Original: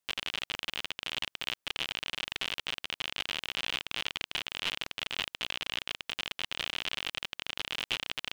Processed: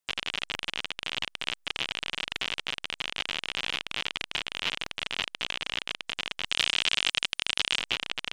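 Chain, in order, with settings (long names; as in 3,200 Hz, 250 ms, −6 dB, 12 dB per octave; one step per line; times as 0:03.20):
gate on every frequency bin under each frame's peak −30 dB strong
0:06.46–0:07.79: high-shelf EQ 2,700 Hz +11 dB
in parallel at −3.5 dB: slack as between gear wheels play −27 dBFS
on the sum: level −1 dB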